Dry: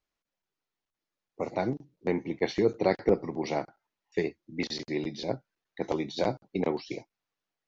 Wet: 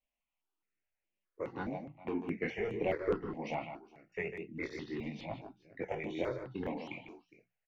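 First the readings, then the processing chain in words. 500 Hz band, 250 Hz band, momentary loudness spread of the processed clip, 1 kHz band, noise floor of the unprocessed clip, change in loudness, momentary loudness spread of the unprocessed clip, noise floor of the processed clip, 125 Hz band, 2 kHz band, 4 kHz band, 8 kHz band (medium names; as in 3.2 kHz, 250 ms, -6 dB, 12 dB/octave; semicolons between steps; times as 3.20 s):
-8.0 dB, -8.0 dB, 13 LU, -7.0 dB, under -85 dBFS, -8.0 dB, 11 LU, under -85 dBFS, -7.0 dB, -3.0 dB, -13.0 dB, no reading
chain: hum notches 60/120/180 Hz; saturation -17.5 dBFS, distortion -15 dB; wow and flutter 17 cents; resonant high shelf 3.4 kHz -7.5 dB, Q 3; chorus voices 2, 0.54 Hz, delay 21 ms, depth 3.3 ms; multi-tap echo 149/412 ms -8.5/-20 dB; stepped phaser 4.8 Hz 370–4800 Hz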